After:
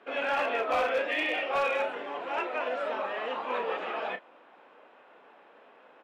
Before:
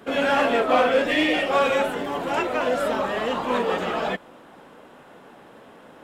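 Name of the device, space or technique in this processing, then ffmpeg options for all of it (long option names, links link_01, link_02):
megaphone: -filter_complex "[0:a]highpass=460,lowpass=3000,equalizer=frequency=2500:width_type=o:width=0.21:gain=6,asoftclip=type=hard:threshold=-15dB,asplit=2[link_01][link_02];[link_02]adelay=31,volume=-10dB[link_03];[link_01][link_03]amix=inputs=2:normalize=0,volume=-7dB"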